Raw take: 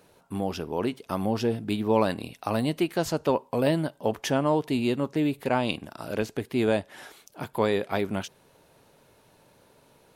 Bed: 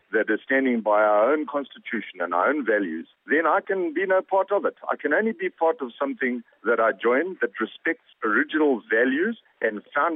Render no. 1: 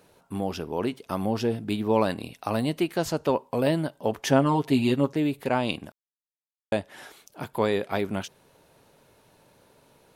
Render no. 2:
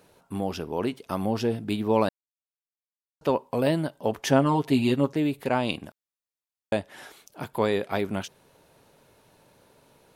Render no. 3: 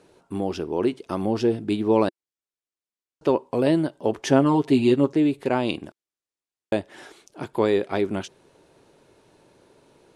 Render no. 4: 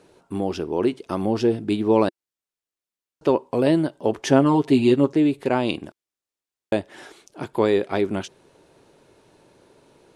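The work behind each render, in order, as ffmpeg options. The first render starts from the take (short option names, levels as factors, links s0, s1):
-filter_complex "[0:a]asettb=1/sr,asplit=3[s0][s1][s2];[s0]atrim=end=4.264[s3];[s1]atrim=start=4.26:end=5.13,asetpts=PTS-STARTPTS,afade=t=in:d=0.004:c=qsin,afade=t=out:st=0.866:d=0.004:c=qsin,aecho=1:1:7.4:0.89,atrim=end_sample=38367[s4];[s2]atrim=start=5.126[s5];[s3][s4]acrossfade=d=0.004:c1=hsin:c2=qsin[s6];[s6][s5]acrossfade=d=0.004:c1=qsin:c2=hsin,asplit=3[s7][s8][s9];[s7]atrim=end=5.92,asetpts=PTS-STARTPTS,afade=t=out:st=5.916:d=0.004:c=hsin[s10];[s8]atrim=start=5.92:end=6.72,asetpts=PTS-STARTPTS,volume=0[s11];[s9]atrim=start=6.72,asetpts=PTS-STARTPTS,afade=t=in:d=0.004:c=hsin[s12];[s10][s11][s12]concat=n=3:v=0:a=1"
-filter_complex "[0:a]asplit=3[s0][s1][s2];[s0]atrim=end=2.09,asetpts=PTS-STARTPTS,afade=t=out:st=2.086:d=0.004:c=hsin[s3];[s1]atrim=start=2.09:end=3.21,asetpts=PTS-STARTPTS,volume=0[s4];[s2]atrim=start=3.21,asetpts=PTS-STARTPTS,afade=t=in:d=0.004:c=hsin[s5];[s3][s4][s5]concat=n=3:v=0:a=1"
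-af "lowpass=f=9800:w=0.5412,lowpass=f=9800:w=1.3066,equalizer=f=350:t=o:w=0.59:g=9"
-af "volume=1.19"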